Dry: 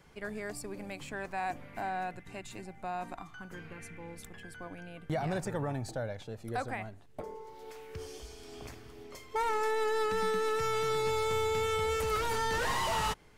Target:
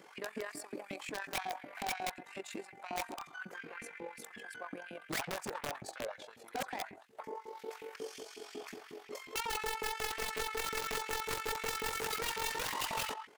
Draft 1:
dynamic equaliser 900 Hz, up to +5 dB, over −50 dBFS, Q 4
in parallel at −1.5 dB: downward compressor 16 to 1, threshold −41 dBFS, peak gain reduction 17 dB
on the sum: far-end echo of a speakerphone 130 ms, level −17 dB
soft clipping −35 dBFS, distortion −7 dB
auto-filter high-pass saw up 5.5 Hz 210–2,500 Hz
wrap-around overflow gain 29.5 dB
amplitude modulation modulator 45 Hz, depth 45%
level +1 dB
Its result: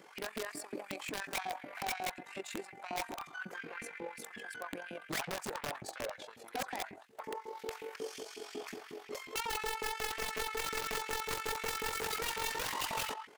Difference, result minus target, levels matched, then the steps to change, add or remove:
downward compressor: peak gain reduction −11 dB
change: downward compressor 16 to 1, threshold −52.5 dBFS, peak gain reduction 27.5 dB

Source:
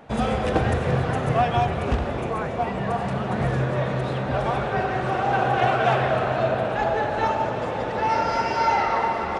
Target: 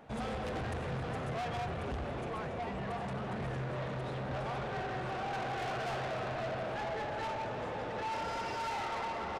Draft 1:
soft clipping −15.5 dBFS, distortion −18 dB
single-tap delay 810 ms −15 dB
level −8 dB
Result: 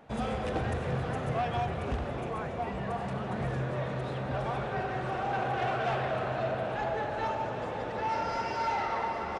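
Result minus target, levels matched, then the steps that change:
soft clipping: distortion −10 dB
change: soft clipping −26.5 dBFS, distortion −8 dB

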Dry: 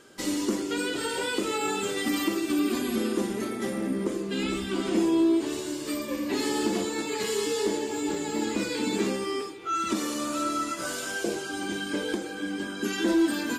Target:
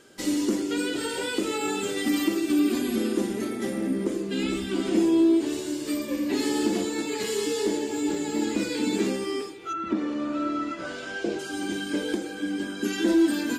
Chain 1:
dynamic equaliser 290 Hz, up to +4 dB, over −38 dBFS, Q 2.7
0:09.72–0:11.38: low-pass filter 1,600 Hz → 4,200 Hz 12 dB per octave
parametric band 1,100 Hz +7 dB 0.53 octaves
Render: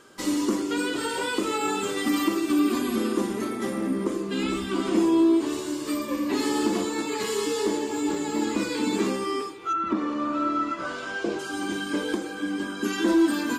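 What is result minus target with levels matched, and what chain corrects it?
1,000 Hz band +5.5 dB
dynamic equaliser 290 Hz, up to +4 dB, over −38 dBFS, Q 2.7
0:09.72–0:11.38: low-pass filter 1,600 Hz → 4,200 Hz 12 dB per octave
parametric band 1,100 Hz −4.5 dB 0.53 octaves

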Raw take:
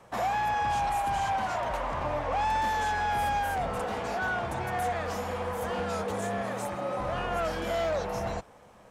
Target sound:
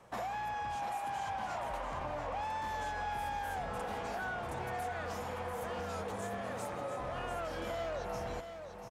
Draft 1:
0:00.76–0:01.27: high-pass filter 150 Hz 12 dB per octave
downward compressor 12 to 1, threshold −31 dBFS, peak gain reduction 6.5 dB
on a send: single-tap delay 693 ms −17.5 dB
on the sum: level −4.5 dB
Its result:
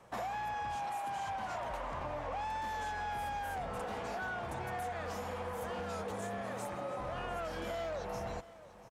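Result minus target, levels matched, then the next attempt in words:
echo-to-direct −9.5 dB
0:00.76–0:01.27: high-pass filter 150 Hz 12 dB per octave
downward compressor 12 to 1, threshold −31 dBFS, peak gain reduction 6.5 dB
on a send: single-tap delay 693 ms −8 dB
on the sum: level −4.5 dB

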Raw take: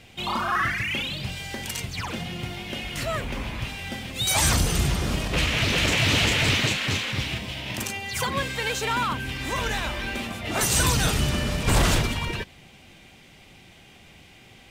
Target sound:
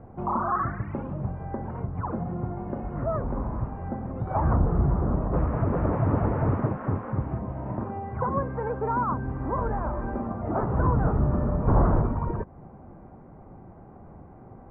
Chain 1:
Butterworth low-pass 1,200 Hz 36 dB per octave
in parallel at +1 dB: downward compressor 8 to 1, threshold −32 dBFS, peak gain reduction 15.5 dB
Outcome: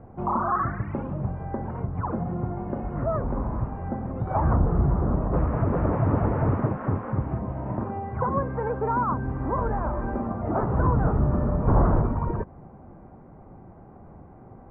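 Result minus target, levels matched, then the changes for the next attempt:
downward compressor: peak gain reduction −5.5 dB
change: downward compressor 8 to 1, threshold −38.5 dBFS, peak gain reduction 21 dB

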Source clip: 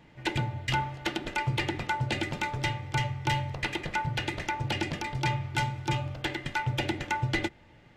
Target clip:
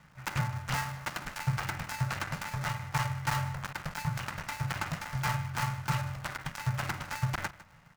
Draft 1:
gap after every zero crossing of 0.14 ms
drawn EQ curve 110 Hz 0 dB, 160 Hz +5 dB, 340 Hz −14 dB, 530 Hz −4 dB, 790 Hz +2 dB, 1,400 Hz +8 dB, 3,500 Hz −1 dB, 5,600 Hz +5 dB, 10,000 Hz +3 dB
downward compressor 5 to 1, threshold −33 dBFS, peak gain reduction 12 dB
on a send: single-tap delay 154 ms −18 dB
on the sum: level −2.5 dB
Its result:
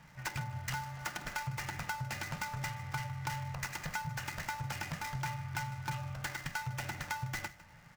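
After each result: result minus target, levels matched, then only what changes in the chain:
downward compressor: peak gain reduction +12 dB; gap after every zero crossing: distortion −7 dB
remove: downward compressor 5 to 1, threshold −33 dBFS, peak gain reduction 12 dB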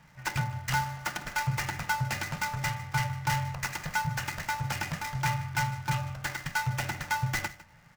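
gap after every zero crossing: distortion −7 dB
change: gap after every zero crossing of 0.41 ms

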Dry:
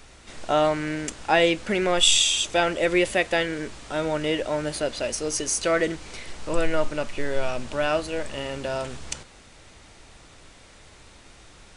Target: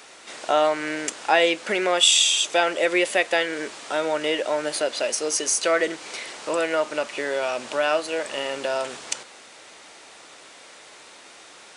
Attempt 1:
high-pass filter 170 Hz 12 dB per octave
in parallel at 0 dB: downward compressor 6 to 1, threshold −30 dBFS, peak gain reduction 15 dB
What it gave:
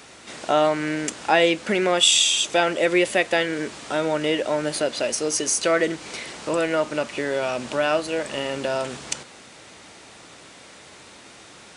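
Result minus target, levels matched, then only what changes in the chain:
125 Hz band +12.0 dB
change: high-pass filter 410 Hz 12 dB per octave

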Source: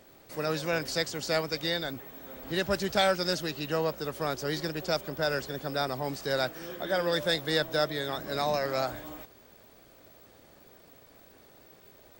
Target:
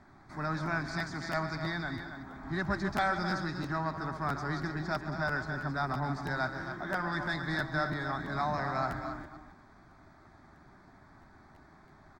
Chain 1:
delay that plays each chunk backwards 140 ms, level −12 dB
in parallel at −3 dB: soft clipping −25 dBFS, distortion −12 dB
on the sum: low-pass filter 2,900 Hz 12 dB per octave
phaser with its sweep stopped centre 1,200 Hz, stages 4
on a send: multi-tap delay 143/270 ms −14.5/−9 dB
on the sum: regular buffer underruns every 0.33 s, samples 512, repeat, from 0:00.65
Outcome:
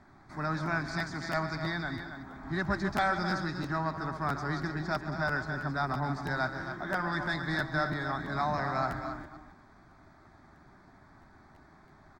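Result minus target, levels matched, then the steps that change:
soft clipping: distortion −6 dB
change: soft clipping −33 dBFS, distortion −6 dB

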